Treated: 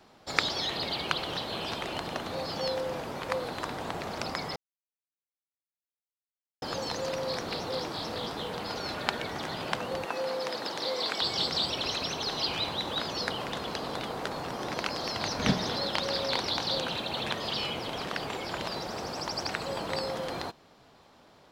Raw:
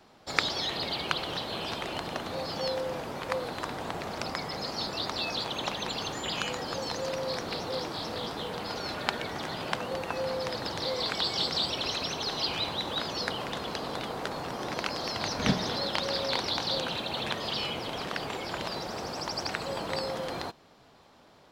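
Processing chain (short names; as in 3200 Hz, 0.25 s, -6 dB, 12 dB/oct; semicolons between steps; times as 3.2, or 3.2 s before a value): 4.56–6.62 mute; 10.05–11.22 HPF 250 Hz 12 dB/oct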